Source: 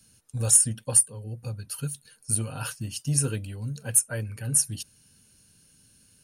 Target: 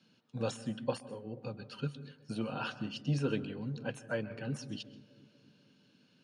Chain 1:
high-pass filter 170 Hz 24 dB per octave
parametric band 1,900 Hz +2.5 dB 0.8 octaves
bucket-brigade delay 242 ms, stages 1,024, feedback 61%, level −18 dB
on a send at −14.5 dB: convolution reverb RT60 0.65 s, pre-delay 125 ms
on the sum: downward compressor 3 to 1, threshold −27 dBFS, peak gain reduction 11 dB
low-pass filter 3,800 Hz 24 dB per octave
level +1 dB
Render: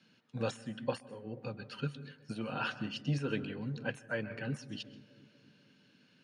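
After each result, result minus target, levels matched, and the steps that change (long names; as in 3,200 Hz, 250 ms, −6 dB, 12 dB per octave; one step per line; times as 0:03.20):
downward compressor: peak gain reduction +4.5 dB; 2,000 Hz band +4.0 dB
change: downward compressor 3 to 1, threshold −20 dBFS, peak gain reduction 6.5 dB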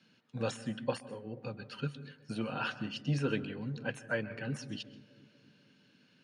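2,000 Hz band +4.0 dB
change: parametric band 1,900 Hz −5 dB 0.8 octaves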